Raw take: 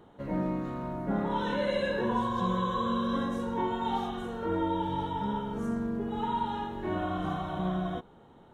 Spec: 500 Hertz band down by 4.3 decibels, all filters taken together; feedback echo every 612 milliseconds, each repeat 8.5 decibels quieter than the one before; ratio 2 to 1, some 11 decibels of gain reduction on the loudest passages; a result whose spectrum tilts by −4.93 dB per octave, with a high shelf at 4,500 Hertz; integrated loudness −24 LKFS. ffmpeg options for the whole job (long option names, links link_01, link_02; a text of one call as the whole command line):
ffmpeg -i in.wav -af "equalizer=frequency=500:width_type=o:gain=-5.5,highshelf=frequency=4500:gain=5.5,acompressor=threshold=-48dB:ratio=2,aecho=1:1:612|1224|1836|2448:0.376|0.143|0.0543|0.0206,volume=19dB" out.wav